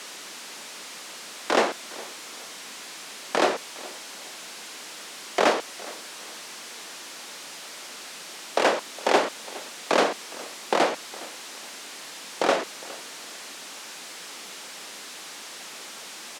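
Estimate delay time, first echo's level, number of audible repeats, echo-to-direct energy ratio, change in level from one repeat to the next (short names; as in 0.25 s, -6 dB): 0.412 s, -20.0 dB, 2, -19.5 dB, -10.5 dB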